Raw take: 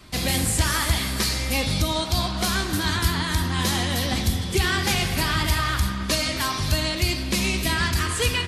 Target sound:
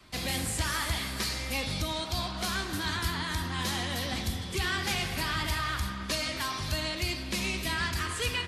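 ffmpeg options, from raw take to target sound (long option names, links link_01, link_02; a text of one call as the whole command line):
ffmpeg -i in.wav -filter_complex "[0:a]highshelf=frequency=4700:gain=-5.5,acrossover=split=290|1500[link_01][link_02][link_03];[link_02]volume=27.5dB,asoftclip=hard,volume=-27.5dB[link_04];[link_01][link_04][link_03]amix=inputs=3:normalize=0,lowshelf=frequency=440:gain=-5.5,volume=-5dB" out.wav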